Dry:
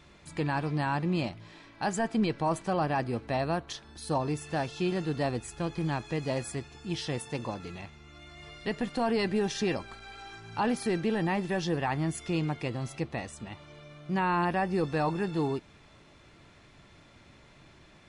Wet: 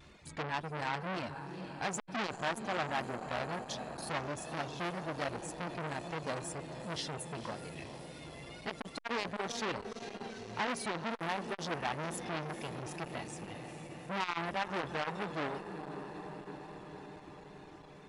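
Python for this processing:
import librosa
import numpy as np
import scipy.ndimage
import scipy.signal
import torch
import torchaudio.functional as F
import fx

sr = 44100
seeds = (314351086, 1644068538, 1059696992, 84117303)

p1 = fx.dereverb_blind(x, sr, rt60_s=1.9)
p2 = fx.vibrato(p1, sr, rate_hz=2.0, depth_cents=61.0)
p3 = p2 + fx.echo_diffused(p2, sr, ms=459, feedback_pct=71, wet_db=-12.0, dry=0)
y = fx.transformer_sat(p3, sr, knee_hz=2200.0)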